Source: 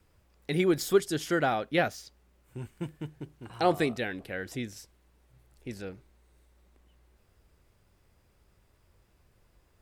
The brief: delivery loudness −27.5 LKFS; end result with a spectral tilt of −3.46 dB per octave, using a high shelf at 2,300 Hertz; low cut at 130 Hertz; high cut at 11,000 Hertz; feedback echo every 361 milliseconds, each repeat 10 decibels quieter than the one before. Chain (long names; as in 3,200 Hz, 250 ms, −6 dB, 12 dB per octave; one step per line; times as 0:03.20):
high-pass filter 130 Hz
low-pass filter 11,000 Hz
high-shelf EQ 2,300 Hz +9 dB
repeating echo 361 ms, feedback 32%, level −10 dB
level +1 dB